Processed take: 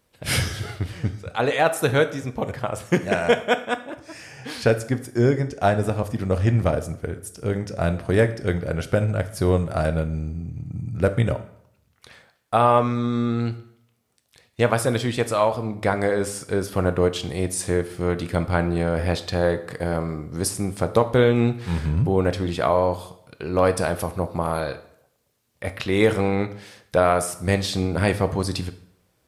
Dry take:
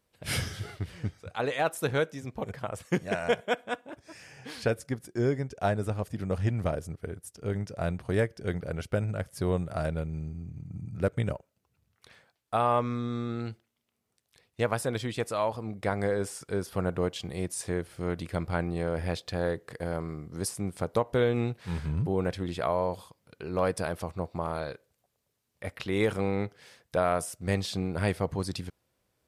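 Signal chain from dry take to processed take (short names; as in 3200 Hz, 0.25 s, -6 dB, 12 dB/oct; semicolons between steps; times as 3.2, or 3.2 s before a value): 23.99–24.61 bell 11000 Hz +13.5 dB 0.31 oct; plate-style reverb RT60 0.68 s, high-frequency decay 0.8×, DRR 9.5 dB; gain +8 dB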